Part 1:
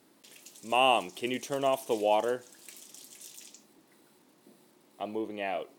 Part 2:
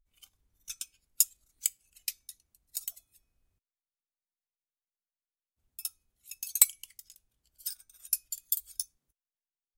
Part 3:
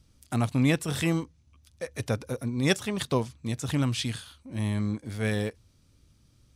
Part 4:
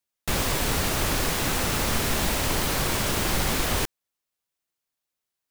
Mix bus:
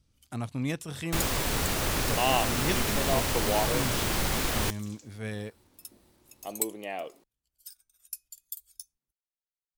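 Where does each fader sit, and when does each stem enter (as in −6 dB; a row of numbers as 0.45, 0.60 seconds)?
−2.5, −9.5, −8.0, −3.5 decibels; 1.45, 0.00, 0.00, 0.85 seconds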